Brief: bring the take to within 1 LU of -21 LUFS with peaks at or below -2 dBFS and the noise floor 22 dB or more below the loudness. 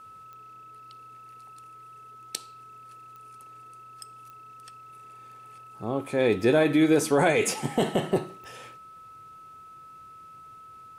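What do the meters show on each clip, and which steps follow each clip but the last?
clicks found 4; steady tone 1.3 kHz; tone level -45 dBFS; loudness -24.5 LUFS; peak level -8.5 dBFS; loudness target -21.0 LUFS
-> de-click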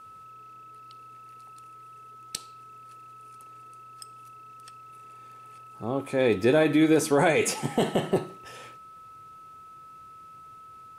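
clicks found 0; steady tone 1.3 kHz; tone level -45 dBFS
-> band-stop 1.3 kHz, Q 30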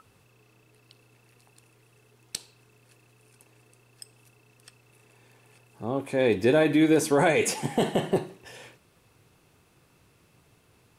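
steady tone not found; loudness -24.5 LUFS; peak level -8.5 dBFS; loudness target -21.0 LUFS
-> trim +3.5 dB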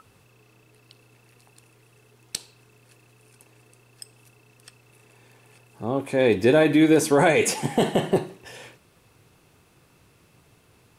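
loudness -21.0 LUFS; peak level -5.0 dBFS; noise floor -59 dBFS

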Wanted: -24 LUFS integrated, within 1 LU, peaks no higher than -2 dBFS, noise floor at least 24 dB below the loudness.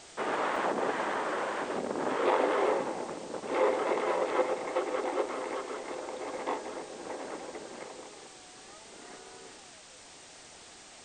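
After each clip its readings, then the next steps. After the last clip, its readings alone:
dropouts 1; longest dropout 2.3 ms; noise floor -52 dBFS; noise floor target -56 dBFS; loudness -32.0 LUFS; peak level -14.5 dBFS; loudness target -24.0 LUFS
-> interpolate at 0.56 s, 2.3 ms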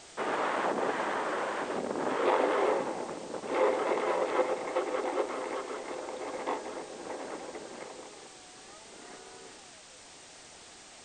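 dropouts 0; noise floor -52 dBFS; noise floor target -56 dBFS
-> noise print and reduce 6 dB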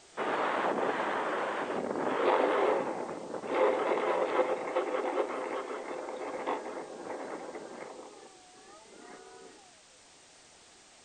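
noise floor -58 dBFS; loudness -32.0 LUFS; peak level -14.5 dBFS; loudness target -24.0 LUFS
-> trim +8 dB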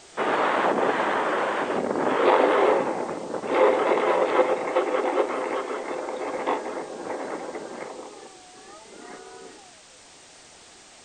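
loudness -24.0 LUFS; peak level -6.5 dBFS; noise floor -50 dBFS

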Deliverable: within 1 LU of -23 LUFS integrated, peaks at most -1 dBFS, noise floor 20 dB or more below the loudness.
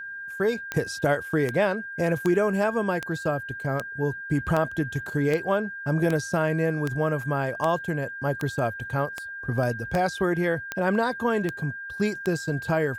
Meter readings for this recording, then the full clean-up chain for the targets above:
clicks found 16; steady tone 1.6 kHz; tone level -34 dBFS; loudness -26.5 LUFS; peak level -8.5 dBFS; loudness target -23.0 LUFS
-> de-click; band-stop 1.6 kHz, Q 30; trim +3.5 dB

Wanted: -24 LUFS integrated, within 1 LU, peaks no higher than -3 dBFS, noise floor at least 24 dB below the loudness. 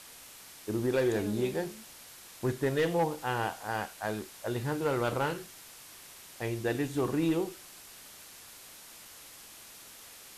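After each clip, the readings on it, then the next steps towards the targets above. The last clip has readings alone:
clipped samples 0.3%; clipping level -21.0 dBFS; noise floor -51 dBFS; noise floor target -56 dBFS; loudness -32.0 LUFS; peak level -21.0 dBFS; loudness target -24.0 LUFS
-> clip repair -21 dBFS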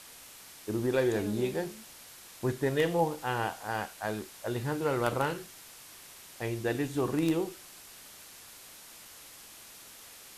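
clipped samples 0.0%; noise floor -51 dBFS; noise floor target -56 dBFS
-> noise reduction 6 dB, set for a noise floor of -51 dBFS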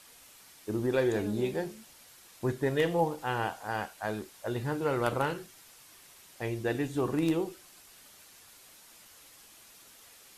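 noise floor -56 dBFS; loudness -32.0 LUFS; peak level -12.0 dBFS; loudness target -24.0 LUFS
-> trim +8 dB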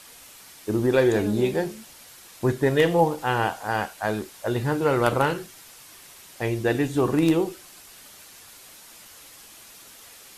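loudness -24.0 LUFS; peak level -4.0 dBFS; noise floor -48 dBFS

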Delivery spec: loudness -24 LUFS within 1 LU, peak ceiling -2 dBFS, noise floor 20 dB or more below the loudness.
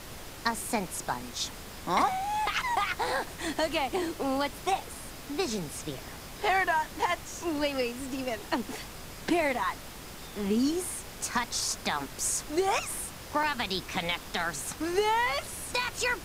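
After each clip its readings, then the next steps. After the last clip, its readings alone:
dropouts 3; longest dropout 2.0 ms; noise floor -44 dBFS; noise floor target -51 dBFS; loudness -30.5 LUFS; peak level -12.0 dBFS; loudness target -24.0 LUFS
-> interpolate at 8.62/10.85/13.43 s, 2 ms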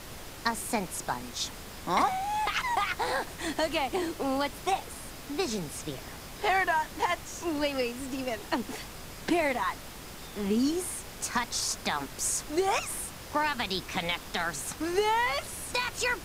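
dropouts 0; noise floor -44 dBFS; noise floor target -51 dBFS
-> noise print and reduce 7 dB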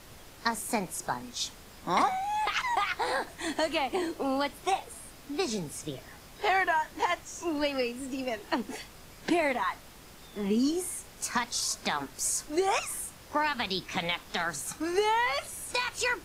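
noise floor -51 dBFS; loudness -30.5 LUFS; peak level -12.0 dBFS; loudness target -24.0 LUFS
-> trim +6.5 dB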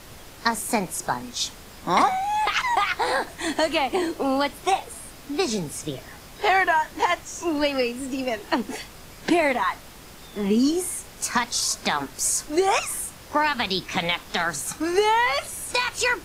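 loudness -24.0 LUFS; peak level -5.5 dBFS; noise floor -44 dBFS

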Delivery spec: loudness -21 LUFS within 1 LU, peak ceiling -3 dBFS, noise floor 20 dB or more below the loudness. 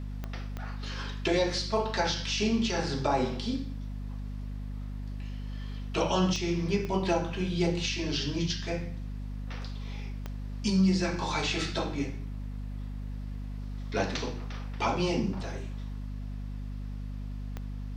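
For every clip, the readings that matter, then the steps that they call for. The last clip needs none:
clicks found 6; hum 50 Hz; highest harmonic 250 Hz; hum level -34 dBFS; loudness -32.0 LUFS; peak level -14.5 dBFS; loudness target -21.0 LUFS
-> de-click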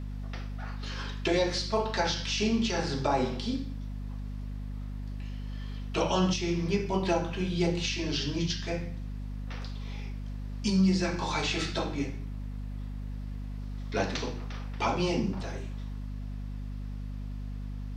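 clicks found 0; hum 50 Hz; highest harmonic 250 Hz; hum level -34 dBFS
-> hum notches 50/100/150/200/250 Hz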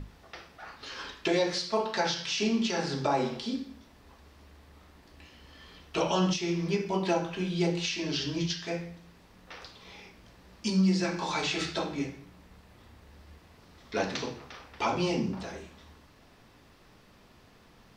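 hum not found; loudness -30.5 LUFS; peak level -15.5 dBFS; loudness target -21.0 LUFS
-> trim +9.5 dB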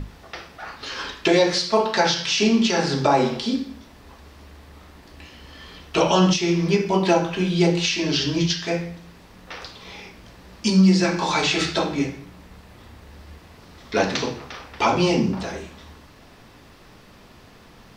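loudness -21.0 LUFS; peak level -6.0 dBFS; noise floor -48 dBFS

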